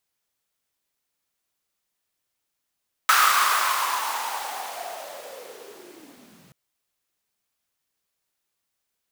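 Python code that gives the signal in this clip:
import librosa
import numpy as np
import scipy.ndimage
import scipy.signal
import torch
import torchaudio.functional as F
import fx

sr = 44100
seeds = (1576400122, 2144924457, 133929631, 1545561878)

y = fx.riser_noise(sr, seeds[0], length_s=3.43, colour='pink', kind='highpass', start_hz=1300.0, end_hz=140.0, q=5.8, swell_db=-37.0, law='linear')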